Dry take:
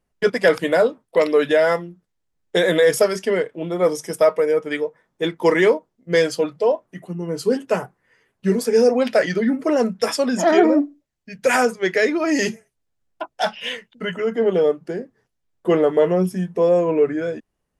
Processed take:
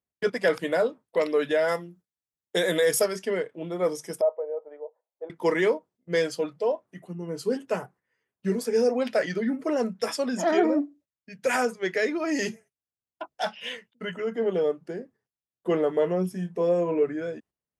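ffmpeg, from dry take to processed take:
ffmpeg -i in.wav -filter_complex "[0:a]asettb=1/sr,asplit=3[link_01][link_02][link_03];[link_01]atrim=end=1.684[link_04];[link_02]atrim=start=1.68:end=3.06,asetpts=PTS-STARTPTS,afade=type=in:duration=0.004:curve=qsin,afade=type=out:start_time=1.376:duration=0.004:curve=qsin,highshelf=frequency=5900:gain=11[link_05];[link_03]atrim=start=3.056[link_06];[link_04][link_05]acrossfade=duration=0.004:curve1=hsin:curve2=qsin[link_07];[link_07][link_06]acrossfade=duration=0.004:curve1=qsin:curve2=hsin,asettb=1/sr,asplit=3[link_08][link_09][link_10];[link_08]atrim=end=4.214[link_11];[link_09]atrim=start=4.21:end=5.3,asetpts=PTS-STARTPTS,afade=type=in:duration=0.004:curve=qsin,afade=type=out:start_time=1.086:duration=0.004:curve=qsin,asuperpass=centerf=660:order=4:qfactor=1.9[link_12];[link_10]atrim=start=5.296[link_13];[link_11][link_12]acrossfade=duration=0.004:curve1=hsin:curve2=qsin[link_14];[link_14][link_13]acrossfade=duration=0.004:curve1=qsin:curve2=hsin,asettb=1/sr,asplit=3[link_15][link_16][link_17];[link_15]atrim=end=16.324[link_18];[link_16]atrim=start=16.32:end=17.03,asetpts=PTS-STARTPTS,afade=type=in:duration=0.004:curve=qsin,afade=type=out:start_time=0.706:duration=0.004:curve=qsin,asplit=2[link_19][link_20];[link_20]adelay=29,volume=-9.5dB[link_21];[link_19][link_21]amix=inputs=2:normalize=0,atrim=end_sample=31311[link_22];[link_17]atrim=start=17.026[link_23];[link_18][link_22]acrossfade=duration=0.004:curve1=hsin:curve2=qsin[link_24];[link_24][link_23]acrossfade=duration=0.004:curve1=qsin:curve2=hsin,agate=range=-10dB:threshold=-45dB:ratio=16:detection=peak,highpass=70,volume=-7.5dB" out.wav

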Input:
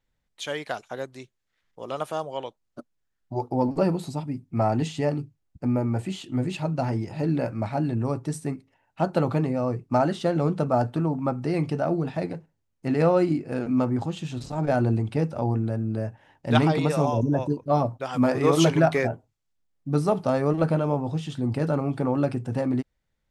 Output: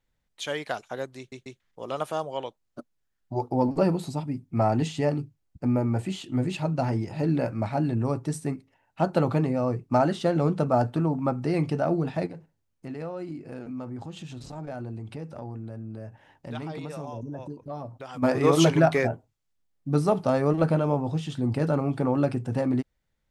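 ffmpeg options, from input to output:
ffmpeg -i in.wav -filter_complex "[0:a]asplit=3[link_01][link_02][link_03];[link_01]afade=type=out:start_time=12.26:duration=0.02[link_04];[link_02]acompressor=threshold=-39dB:ratio=2.5:attack=3.2:release=140:knee=1:detection=peak,afade=type=in:start_time=12.26:duration=0.02,afade=type=out:start_time=18.22:duration=0.02[link_05];[link_03]afade=type=in:start_time=18.22:duration=0.02[link_06];[link_04][link_05][link_06]amix=inputs=3:normalize=0,asplit=4[link_07][link_08][link_09][link_10];[link_07]atrim=end=1.322[link_11];[link_08]atrim=start=1.178:end=1.322[link_12];[link_09]atrim=start=1.178:end=1.322[link_13];[link_10]atrim=start=1.598[link_14];[link_11][link_12]acrossfade=duration=0.004:curve1=hsin:curve2=hsin[link_15];[link_15][link_13]acrossfade=duration=0.004:curve1=hsin:curve2=hsin[link_16];[link_16][link_14]acrossfade=duration=0.004:curve1=hsin:curve2=hsin" out.wav

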